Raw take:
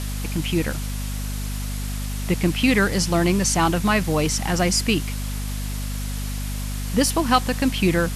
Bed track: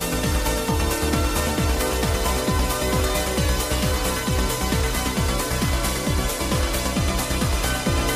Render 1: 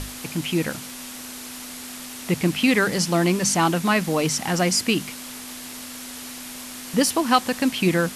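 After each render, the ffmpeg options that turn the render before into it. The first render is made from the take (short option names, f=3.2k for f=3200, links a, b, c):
-af "bandreject=f=50:t=h:w=6,bandreject=f=100:t=h:w=6,bandreject=f=150:t=h:w=6,bandreject=f=200:t=h:w=6"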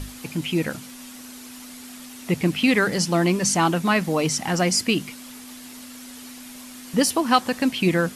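-af "afftdn=nr=7:nf=-37"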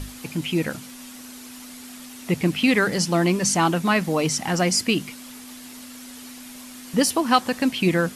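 -af anull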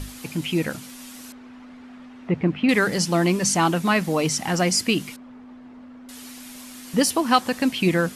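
-filter_complex "[0:a]asettb=1/sr,asplit=3[a][b][c];[a]atrim=end=1.324[d];[b]atrim=start=1.32:end=2.69,asetpts=PTS-STARTPTS,afade=t=in:d=0.004:c=qsin,afade=t=out:st=1.366:d=0.004:c=qsin,lowpass=1.7k[e];[c]atrim=start=2.686[f];[d][e]acrossfade=d=0.004:c1=hsin:c2=qsin[g];[g][f]acrossfade=d=0.004:c1=qsin:c2=hsin,asettb=1/sr,asplit=3[h][i][j];[h]atrim=end=5.164[k];[i]atrim=start=5.16:end=6.09,asetpts=PTS-STARTPTS,afade=t=in:d=0.004:c=qsin,afade=t=out:st=0.926:d=0.004:c=qsin,lowpass=1.1k[l];[j]atrim=start=6.086[m];[k][l]acrossfade=d=0.004:c1=hsin:c2=qsin[n];[n][m]acrossfade=d=0.004:c1=qsin:c2=hsin"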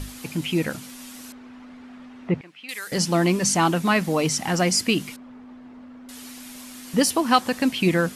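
-filter_complex "[0:a]asettb=1/sr,asplit=3[a][b][c];[a]atrim=end=2.414[d];[b]atrim=start=2.41:end=2.92,asetpts=PTS-STARTPTS,afade=t=in:d=0.004:c=qsin,afade=t=out:st=0.506:d=0.004:c=qsin,aderivative[e];[c]atrim=start=2.916[f];[d][e]acrossfade=d=0.004:c1=hsin:c2=qsin[g];[g][f]acrossfade=d=0.004:c1=qsin:c2=hsin"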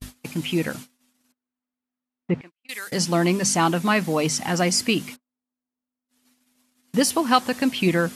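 -af "highpass=f=59:p=1,agate=range=-46dB:threshold=-36dB:ratio=16:detection=peak"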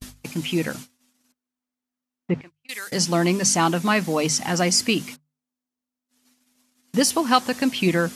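-af "equalizer=f=6k:w=1.5:g=3.5,bandreject=f=50:t=h:w=6,bandreject=f=100:t=h:w=6,bandreject=f=150:t=h:w=6"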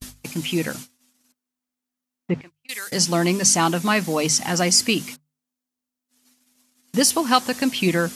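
-af "highshelf=f=4.5k:g=5"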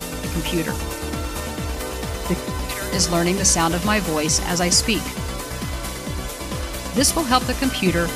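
-filter_complex "[1:a]volume=-5.5dB[a];[0:a][a]amix=inputs=2:normalize=0"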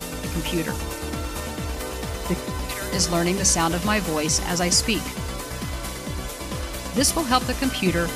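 -af "volume=-2.5dB"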